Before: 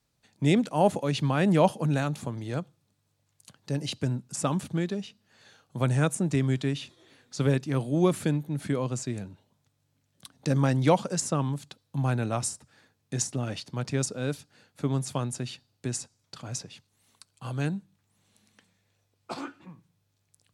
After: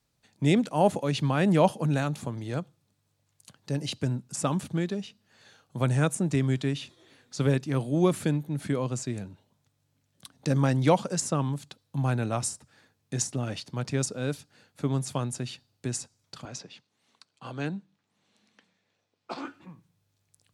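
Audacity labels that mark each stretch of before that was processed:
16.450000	19.450000	three-way crossover with the lows and the highs turned down lows −24 dB, under 150 Hz, highs −18 dB, over 6,300 Hz

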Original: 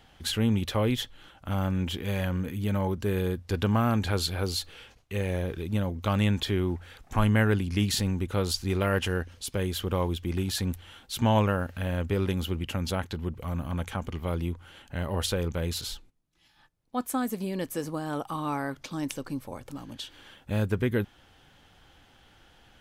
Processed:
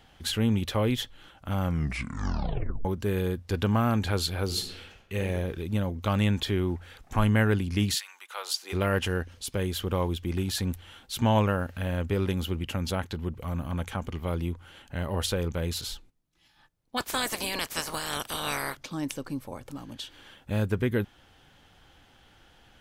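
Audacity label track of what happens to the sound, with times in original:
1.610000	1.610000	tape stop 1.24 s
4.450000	5.180000	thrown reverb, RT60 0.88 s, DRR 3.5 dB
7.930000	8.720000	high-pass filter 1,500 Hz → 460 Hz 24 dB per octave
16.960000	18.750000	ceiling on every frequency bin ceiling under each frame's peak by 30 dB

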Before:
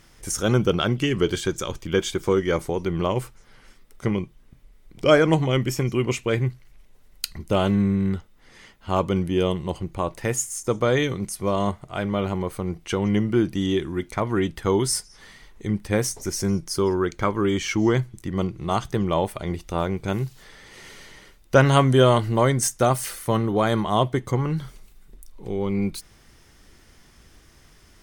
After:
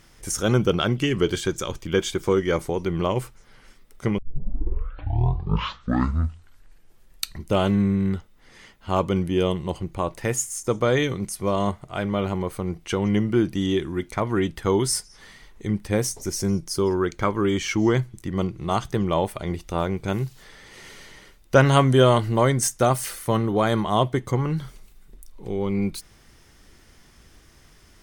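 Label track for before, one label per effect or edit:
4.180000	4.180000	tape start 3.28 s
15.910000	16.910000	parametric band 1,600 Hz −3.5 dB 1.6 octaves

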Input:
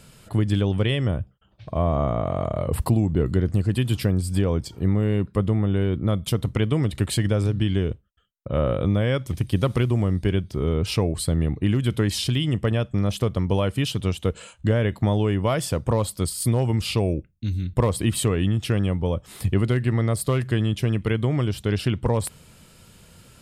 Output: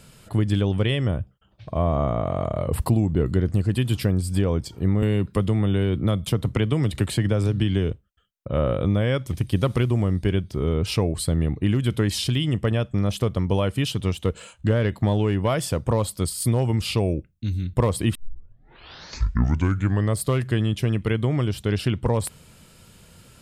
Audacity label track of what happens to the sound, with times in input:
5.020000	7.910000	multiband upward and downward compressor depth 70%
13.940000	15.480000	phase distortion by the signal itself depth 0.062 ms
18.150000	18.150000	tape start 2.04 s

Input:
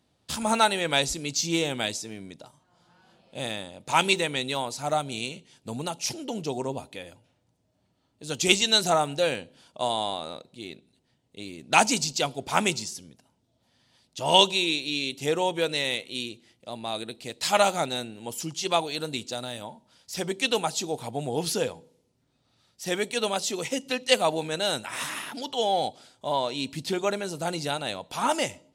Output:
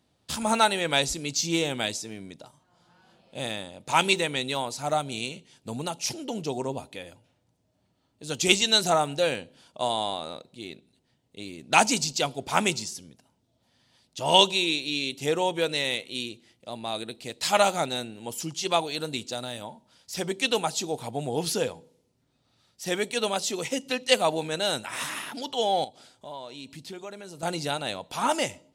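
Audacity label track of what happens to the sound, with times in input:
25.840000	27.430000	downward compressor 2 to 1, threshold −46 dBFS

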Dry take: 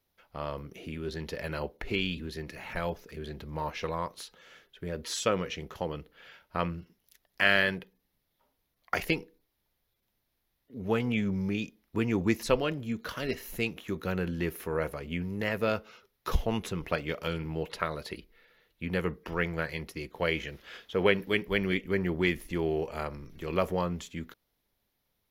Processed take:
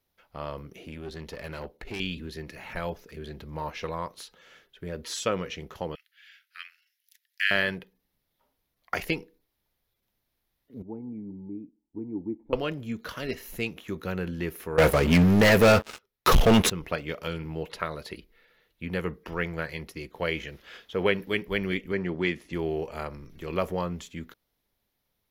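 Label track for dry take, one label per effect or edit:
0.830000	2.000000	tube saturation drive 30 dB, bias 0.5
5.950000	7.510000	Butterworth high-pass 1,600 Hz 48 dB per octave
10.820000	12.530000	formant resonators in series u
14.780000	16.700000	leveller curve on the samples passes 5
21.920000	22.530000	band-pass filter 110–6,800 Hz

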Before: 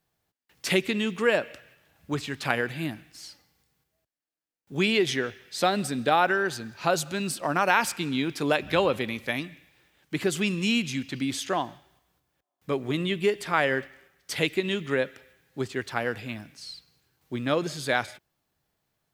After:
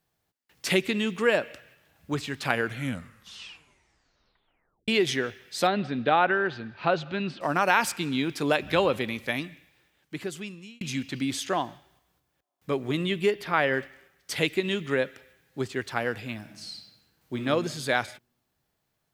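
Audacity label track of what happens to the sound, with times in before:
2.510000	2.510000	tape stop 2.37 s
5.670000	7.410000	low-pass filter 3,600 Hz 24 dB per octave
9.460000	10.810000	fade out
13.310000	13.740000	parametric band 8,100 Hz −13 dB 0.78 octaves
16.390000	17.420000	thrown reverb, RT60 1.2 s, DRR 4 dB

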